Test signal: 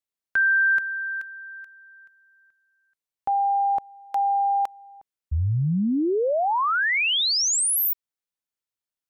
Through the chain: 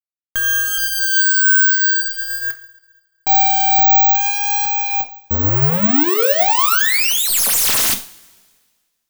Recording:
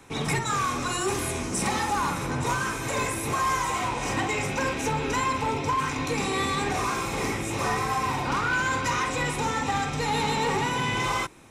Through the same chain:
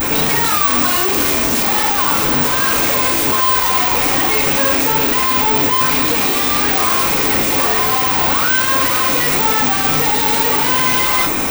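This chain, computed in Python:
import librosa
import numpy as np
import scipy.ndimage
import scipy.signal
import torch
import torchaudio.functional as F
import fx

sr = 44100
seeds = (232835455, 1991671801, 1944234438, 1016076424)

p1 = fx.tracing_dist(x, sr, depth_ms=0.18)
p2 = fx.peak_eq(p1, sr, hz=120.0, db=-12.0, octaves=0.59)
p3 = fx.over_compress(p2, sr, threshold_db=-34.0, ratio=-1.0)
p4 = p2 + (p3 * 10.0 ** (2.5 / 20.0))
p5 = fx.vibrato(p4, sr, rate_hz=0.49, depth_cents=38.0)
p6 = fx.fuzz(p5, sr, gain_db=46.0, gate_db=-49.0)
p7 = fx.rev_double_slope(p6, sr, seeds[0], early_s=0.38, late_s=1.7, knee_db=-21, drr_db=4.5)
p8 = (np.kron(p7[::2], np.eye(2)[0]) * 2)[:len(p7)]
y = p8 * 10.0 ** (-5.0 / 20.0)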